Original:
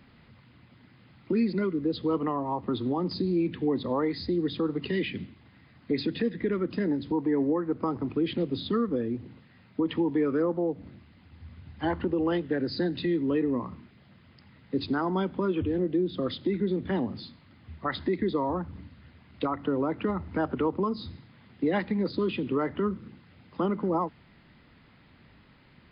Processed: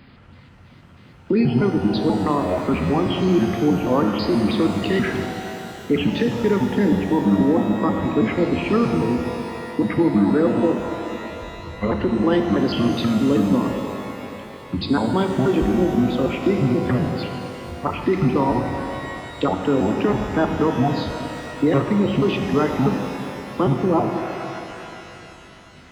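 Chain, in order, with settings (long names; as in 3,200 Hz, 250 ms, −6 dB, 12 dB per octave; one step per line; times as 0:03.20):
pitch shifter gated in a rhythm −7 semitones, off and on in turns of 161 ms
reverb with rising layers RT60 3.1 s, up +12 semitones, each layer −8 dB, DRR 4.5 dB
level +8 dB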